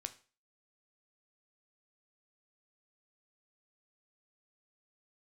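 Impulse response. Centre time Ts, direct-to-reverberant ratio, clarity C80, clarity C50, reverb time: 5 ms, 9.0 dB, 21.0 dB, 16.0 dB, 0.35 s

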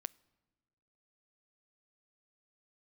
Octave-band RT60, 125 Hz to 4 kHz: 1.4 s, 1.5 s, 1.5 s, 1.3 s, 1.1 s, 0.95 s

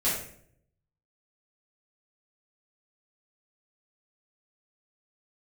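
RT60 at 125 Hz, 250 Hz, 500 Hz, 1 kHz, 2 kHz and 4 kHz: 1.1 s, 0.80 s, 0.70 s, 0.55 s, 0.55 s, 0.45 s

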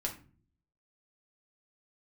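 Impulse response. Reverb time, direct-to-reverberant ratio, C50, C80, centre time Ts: 0.40 s, -0.5 dB, 10.5 dB, 15.5 dB, 15 ms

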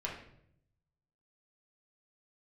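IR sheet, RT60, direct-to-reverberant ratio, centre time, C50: 0.70 s, -3.5 dB, 33 ms, 5.0 dB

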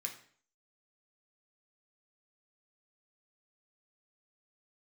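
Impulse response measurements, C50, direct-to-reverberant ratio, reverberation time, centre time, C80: 9.5 dB, 1.0 dB, 0.50 s, 16 ms, 13.5 dB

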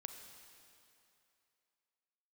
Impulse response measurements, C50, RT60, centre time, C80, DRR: 6.0 dB, 2.8 s, 48 ms, 7.0 dB, 5.5 dB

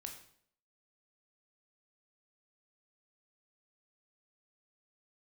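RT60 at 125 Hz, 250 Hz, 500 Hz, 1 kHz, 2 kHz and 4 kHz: 0.65 s, 0.65 s, 0.65 s, 0.60 s, 0.55 s, 0.55 s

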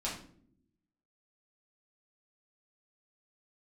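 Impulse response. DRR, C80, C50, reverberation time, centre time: -6.5 dB, 10.0 dB, 6.0 dB, 0.65 s, 32 ms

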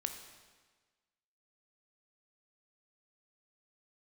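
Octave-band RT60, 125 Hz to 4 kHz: 1.4 s, 1.4 s, 1.4 s, 1.4 s, 1.4 s, 1.3 s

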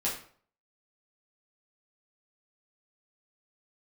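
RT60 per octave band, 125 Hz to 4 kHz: 0.55 s, 0.50 s, 0.50 s, 0.50 s, 0.45 s, 0.35 s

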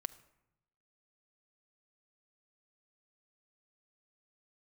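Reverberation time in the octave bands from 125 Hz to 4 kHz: 1.3 s, 1.0 s, 0.85 s, 0.85 s, 0.75 s, 0.55 s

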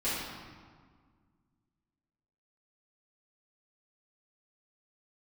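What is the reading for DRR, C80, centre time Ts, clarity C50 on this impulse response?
-13.0 dB, 1.0 dB, 101 ms, -1.5 dB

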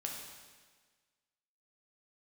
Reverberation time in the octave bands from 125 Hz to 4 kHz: 1.4 s, 1.5 s, 1.5 s, 1.5 s, 1.5 s, 1.5 s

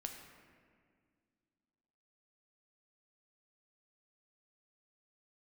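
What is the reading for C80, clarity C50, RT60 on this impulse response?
6.5 dB, 5.0 dB, 2.0 s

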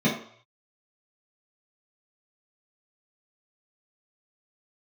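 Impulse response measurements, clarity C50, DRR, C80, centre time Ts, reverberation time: 5.5 dB, -8.5 dB, 10.0 dB, 32 ms, 0.60 s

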